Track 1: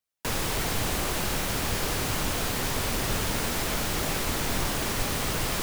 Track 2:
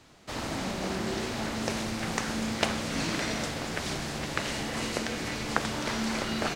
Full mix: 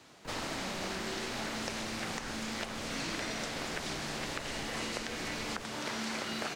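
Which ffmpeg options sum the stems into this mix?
-filter_complex "[0:a]lowpass=f=1.2k:p=1,volume=-14.5dB[a];[1:a]highpass=f=210:p=1,alimiter=limit=-15.5dB:level=0:latency=1:release=480,volume=0.5dB[b];[a][b]amix=inputs=2:normalize=0,acrossover=split=1200|7100[c][d][e];[c]acompressor=threshold=-38dB:ratio=4[f];[d]acompressor=threshold=-38dB:ratio=4[g];[e]acompressor=threshold=-53dB:ratio=4[h];[f][g][h]amix=inputs=3:normalize=0"

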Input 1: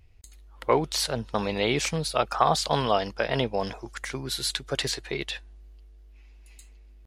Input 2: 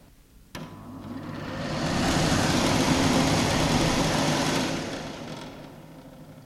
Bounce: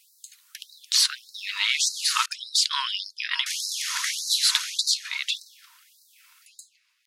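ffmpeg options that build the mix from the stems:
-filter_complex "[0:a]equalizer=f=5k:t=o:w=2.4:g=6.5,aeval=exprs='val(0)+0.00251*(sin(2*PI*50*n/s)+sin(2*PI*2*50*n/s)/2+sin(2*PI*3*50*n/s)/3+sin(2*PI*4*50*n/s)/4+sin(2*PI*5*50*n/s)/5)':c=same,volume=2dB[a];[1:a]highshelf=f=4.4k:g=11,volume=-4dB,asplit=3[b][c][d];[b]atrim=end=2.26,asetpts=PTS-STARTPTS,afade=t=out:st=2.256:d=0.004:c=hsin[e];[c]atrim=start=2.26:end=3.46,asetpts=PTS-STARTPTS,volume=0[f];[d]atrim=start=3.46,asetpts=PTS-STARTPTS,afade=t=in:d=0.004:c=hsin[g];[e][f][g]concat=n=3:v=0:a=1[h];[a][h]amix=inputs=2:normalize=0,afftfilt=real='re*gte(b*sr/1024,890*pow(3900/890,0.5+0.5*sin(2*PI*1.7*pts/sr)))':imag='im*gte(b*sr/1024,890*pow(3900/890,0.5+0.5*sin(2*PI*1.7*pts/sr)))':win_size=1024:overlap=0.75"

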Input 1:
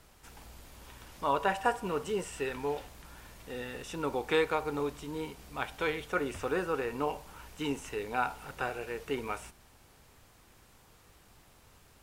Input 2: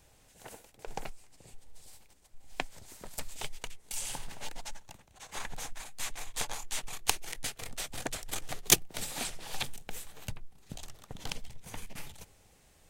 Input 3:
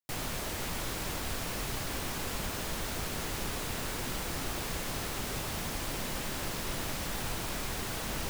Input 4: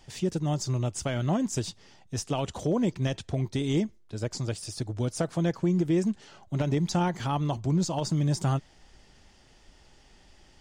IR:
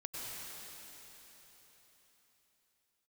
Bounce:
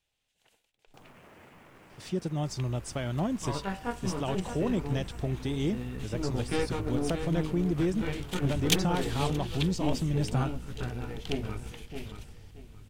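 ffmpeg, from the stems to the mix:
-filter_complex "[0:a]asubboost=boost=11.5:cutoff=220,aeval=exprs='(tanh(8.91*val(0)+0.8)-tanh(0.8))/8.91':c=same,flanger=delay=16:depth=5.3:speed=0.25,adelay=2200,volume=1dB,asplit=2[a][b];[b]volume=-8dB[c];[1:a]equalizer=f=3.1k:w=1:g=13.5,volume=-10.5dB,afade=t=in:st=8.07:d=0.24:silence=0.237137,asplit=2[d][e];[e]volume=-22.5dB[f];[2:a]alimiter=level_in=10dB:limit=-24dB:level=0:latency=1:release=231,volume=-10dB,highpass=110,afwtdn=0.00355,adelay=850,volume=-6.5dB[g];[3:a]equalizer=f=6.8k:t=o:w=0.26:g=-6.5,adelay=1900,volume=-3.5dB[h];[c][f]amix=inputs=2:normalize=0,aecho=0:1:626|1252|1878|2504:1|0.25|0.0625|0.0156[i];[a][d][g][h][i]amix=inputs=5:normalize=0"

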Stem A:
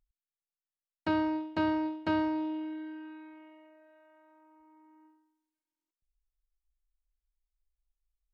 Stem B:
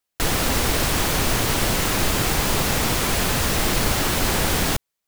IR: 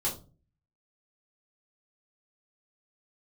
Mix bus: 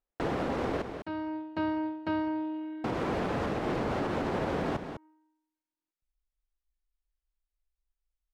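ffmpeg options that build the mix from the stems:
-filter_complex "[0:a]volume=-1.5dB,afade=t=in:st=0.9:d=0.74:silence=0.298538,asplit=2[a][b];[b]volume=-17.5dB[c];[1:a]bandpass=f=420:t=q:w=0.66:csg=0,volume=-1.5dB,asplit=3[d][e][f];[d]atrim=end=0.82,asetpts=PTS-STARTPTS,afade=t=out:st=0.816:d=0.004:c=hsin[g];[e]atrim=start=0.82:end=2.84,asetpts=PTS-STARTPTS,volume=0[h];[f]atrim=start=2.84,asetpts=PTS-STARTPTS,afade=t=in:d=0.004:c=hsin[i];[g][h][i]concat=n=3:v=0:a=1,asplit=2[j][k];[k]volume=-10.5dB[l];[c][l]amix=inputs=2:normalize=0,aecho=0:1:202:1[m];[a][j][m]amix=inputs=3:normalize=0,lowpass=f=3.5k:p=1,alimiter=limit=-22dB:level=0:latency=1:release=82"

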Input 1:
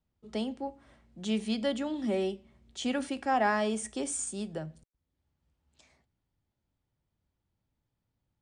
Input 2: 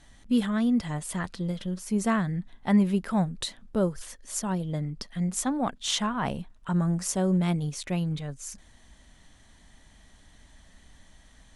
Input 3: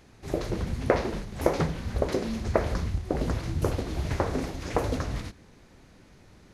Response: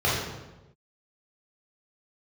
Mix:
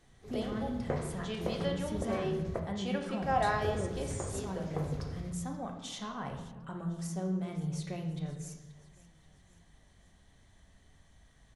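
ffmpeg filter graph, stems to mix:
-filter_complex "[0:a]highpass=380,lowpass=6k,volume=-4.5dB,asplit=2[a][b];[b]volume=-18.5dB[c];[1:a]bandreject=f=60:t=h:w=6,bandreject=f=120:t=h:w=6,bandreject=f=180:t=h:w=6,bandreject=f=240:t=h:w=6,bandreject=f=300:t=h:w=6,alimiter=limit=-23dB:level=0:latency=1:release=227,volume=-9.5dB,asplit=3[d][e][f];[e]volume=-17.5dB[g];[f]volume=-19dB[h];[2:a]volume=-16dB,asplit=3[i][j][k];[i]atrim=end=2.6,asetpts=PTS-STARTPTS,afade=t=out:st=2.596:d=0.004:c=hsin[l];[j]atrim=start=2.6:end=3.22,asetpts=PTS-STARTPTS,volume=0[m];[k]atrim=start=3.22,asetpts=PTS-STARTPTS,afade=t=in:d=0.004:c=hsin[n];[l][m][n]concat=n=3:v=0:a=1,asplit=2[o][p];[p]volume=-18.5dB[q];[3:a]atrim=start_sample=2205[r];[c][g][q]amix=inputs=3:normalize=0[s];[s][r]afir=irnorm=-1:irlink=0[t];[h]aecho=0:1:530|1060|1590|2120|2650|3180|3710|4240:1|0.54|0.292|0.157|0.085|0.0459|0.0248|0.0134[u];[a][d][o][t][u]amix=inputs=5:normalize=0"

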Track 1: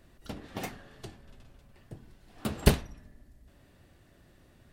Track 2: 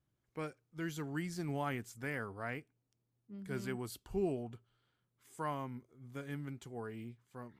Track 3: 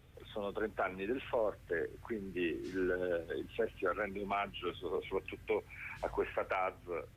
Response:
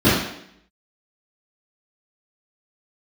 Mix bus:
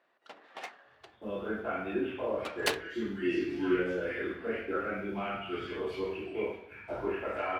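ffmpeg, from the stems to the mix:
-filter_complex "[0:a]adynamicsmooth=sensitivity=7:basefreq=1.9k,highpass=560,volume=2dB[a];[1:a]bandpass=f=2.6k:t=q:w=1.3:csg=0,adelay=2000,volume=-10dB,asplit=2[b][c];[c]volume=-5.5dB[d];[2:a]agate=range=-18dB:threshold=-44dB:ratio=16:detection=peak,adelay=850,volume=-12.5dB,asplit=2[e][f];[f]volume=-7dB[g];[3:a]atrim=start_sample=2205[h];[d][g]amix=inputs=2:normalize=0[i];[i][h]afir=irnorm=-1:irlink=0[j];[a][b][e][j]amix=inputs=4:normalize=0,lowshelf=f=490:g=-12"

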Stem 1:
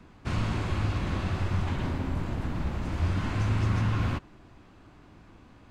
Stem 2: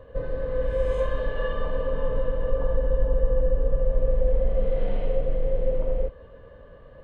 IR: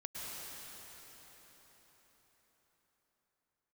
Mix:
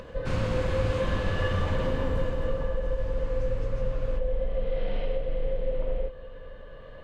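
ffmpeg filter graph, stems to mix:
-filter_complex "[0:a]volume=-2dB,afade=t=out:st=2.08:d=0.66:silence=0.251189,asplit=2[a][b];[b]volume=-12.5dB[c];[1:a]equalizer=f=4k:w=0.43:g=10,alimiter=limit=-15.5dB:level=0:latency=1:release=243,volume=-4dB,asplit=2[d][e];[e]volume=-14.5dB[f];[2:a]atrim=start_sample=2205[g];[c][f]amix=inputs=2:normalize=0[h];[h][g]afir=irnorm=-1:irlink=0[i];[a][d][i]amix=inputs=3:normalize=0,acompressor=mode=upward:threshold=-37dB:ratio=2.5"

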